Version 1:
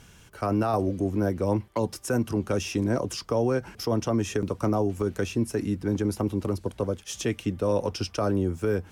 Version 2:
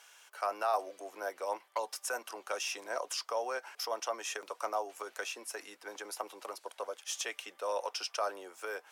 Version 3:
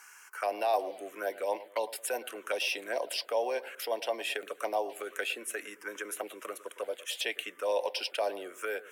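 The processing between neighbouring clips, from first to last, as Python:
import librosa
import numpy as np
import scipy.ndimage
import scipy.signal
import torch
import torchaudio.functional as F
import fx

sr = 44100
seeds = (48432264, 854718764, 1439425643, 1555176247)

y1 = scipy.signal.sosfilt(scipy.signal.butter(4, 650.0, 'highpass', fs=sr, output='sos'), x)
y1 = y1 * librosa.db_to_amplitude(-2.0)
y2 = fx.echo_bbd(y1, sr, ms=109, stages=1024, feedback_pct=44, wet_db=-16.0)
y2 = fx.env_phaser(y2, sr, low_hz=590.0, high_hz=1300.0, full_db=-33.0)
y2 = y2 * librosa.db_to_amplitude(8.0)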